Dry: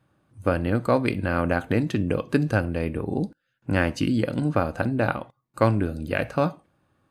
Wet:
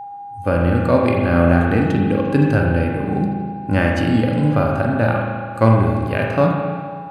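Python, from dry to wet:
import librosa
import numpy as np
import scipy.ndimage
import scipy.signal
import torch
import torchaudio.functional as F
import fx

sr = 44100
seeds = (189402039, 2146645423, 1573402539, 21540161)

y = x + 10.0 ** (-36.0 / 20.0) * np.sin(2.0 * np.pi * 810.0 * np.arange(len(x)) / sr)
y = fx.rev_spring(y, sr, rt60_s=1.8, pass_ms=(35, 40), chirp_ms=50, drr_db=1.5)
y = fx.hpss(y, sr, part='harmonic', gain_db=9)
y = y * librosa.db_to_amplitude(-2.0)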